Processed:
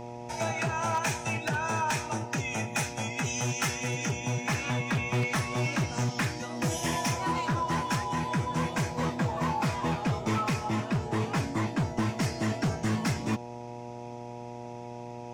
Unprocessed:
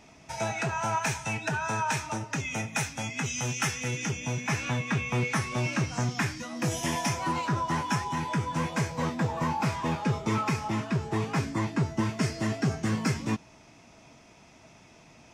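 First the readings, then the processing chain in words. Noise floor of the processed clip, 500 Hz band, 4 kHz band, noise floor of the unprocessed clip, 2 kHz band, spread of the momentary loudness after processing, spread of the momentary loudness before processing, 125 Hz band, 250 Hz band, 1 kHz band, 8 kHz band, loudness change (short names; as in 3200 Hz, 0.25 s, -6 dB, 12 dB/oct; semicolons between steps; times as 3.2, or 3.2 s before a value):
-41 dBFS, +1.0 dB, 0.0 dB, -55 dBFS, -0.5 dB, 13 LU, 3 LU, -0.5 dB, -0.5 dB, 0.0 dB, 0.0 dB, -0.5 dB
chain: buzz 120 Hz, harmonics 8, -41 dBFS -1 dB/oct; wavefolder -21 dBFS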